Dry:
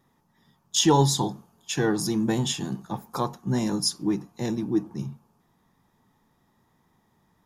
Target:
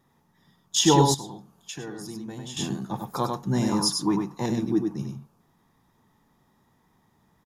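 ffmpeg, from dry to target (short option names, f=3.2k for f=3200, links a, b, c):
-filter_complex "[0:a]aecho=1:1:97:0.596,asettb=1/sr,asplit=3[a][b][c];[a]atrim=end=1.144[d];[b]atrim=start=1.14:end=2.57,asetpts=PTS-STARTPTS,afade=t=in:d=0.004:c=qsin,afade=t=out:st=1.426:d=0.004:c=qsin,acompressor=threshold=-37dB:ratio=4[e];[c]atrim=start=2.566[f];[d][e]acrossfade=d=0.004:c1=hsin:c2=qsin[g];[g][f]acrossfade=d=0.004:c1=qsin:c2=hsin,asettb=1/sr,asplit=3[h][i][j];[h]atrim=end=3.724[k];[i]atrim=start=3.72:end=4.46,asetpts=PTS-STARTPTS,afade=t=in:d=0.004:c=qsin,afade=t=out:st=0.736:d=0.004:c=qsin,equalizer=f=1k:t=o:w=0.6:g=14[l];[j]atrim=start=4.456[m];[k][l]acrossfade=d=0.004:c1=hsin:c2=qsin[n];[n][m]acrossfade=d=0.004:c1=qsin:c2=hsin"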